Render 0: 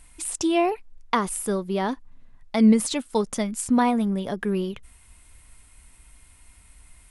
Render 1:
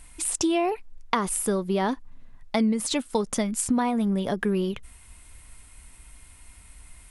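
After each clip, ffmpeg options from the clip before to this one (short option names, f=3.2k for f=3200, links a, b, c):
-af "acompressor=threshold=-23dB:ratio=10,volume=3dB"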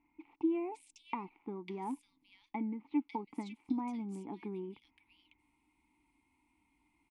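-filter_complex "[0:a]aeval=exprs='0.473*(cos(1*acos(clip(val(0)/0.473,-1,1)))-cos(1*PI/2))+0.0422*(cos(3*acos(clip(val(0)/0.473,-1,1)))-cos(3*PI/2))+0.0335*(cos(4*acos(clip(val(0)/0.473,-1,1)))-cos(4*PI/2))+0.015*(cos(6*acos(clip(val(0)/0.473,-1,1)))-cos(6*PI/2))+0.0075*(cos(7*acos(clip(val(0)/0.473,-1,1)))-cos(7*PI/2))':c=same,asplit=3[a][b][c];[a]bandpass=f=300:t=q:w=8,volume=0dB[d];[b]bandpass=f=870:t=q:w=8,volume=-6dB[e];[c]bandpass=f=2.24k:t=q:w=8,volume=-9dB[f];[d][e][f]amix=inputs=3:normalize=0,acrossover=split=2500[g][h];[h]adelay=550[i];[g][i]amix=inputs=2:normalize=0,volume=1.5dB"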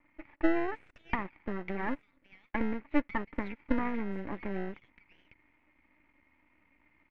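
-filter_complex "[0:a]aeval=exprs='max(val(0),0)':c=same,asplit=2[a][b];[b]acrusher=samples=38:mix=1:aa=0.000001,volume=-8dB[c];[a][c]amix=inputs=2:normalize=0,lowpass=f=2k:t=q:w=3.3,volume=6.5dB"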